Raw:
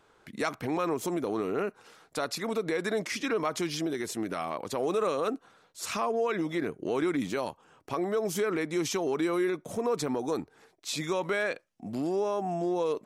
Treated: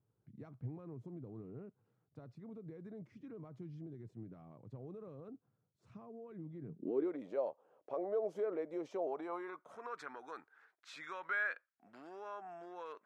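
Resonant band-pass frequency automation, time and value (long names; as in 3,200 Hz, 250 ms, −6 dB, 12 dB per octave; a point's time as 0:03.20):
resonant band-pass, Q 4
0:06.63 120 Hz
0:07.11 560 Hz
0:08.98 560 Hz
0:09.85 1,500 Hz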